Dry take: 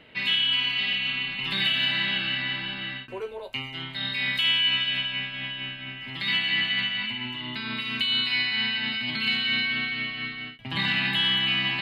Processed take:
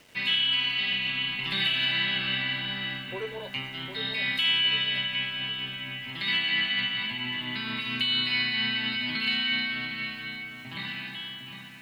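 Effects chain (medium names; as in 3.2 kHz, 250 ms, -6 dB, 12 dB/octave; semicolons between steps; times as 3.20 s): fade out at the end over 2.70 s; filtered feedback delay 757 ms, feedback 40%, low-pass 2.2 kHz, level -7.5 dB; small samples zeroed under -50.5 dBFS; trim -1.5 dB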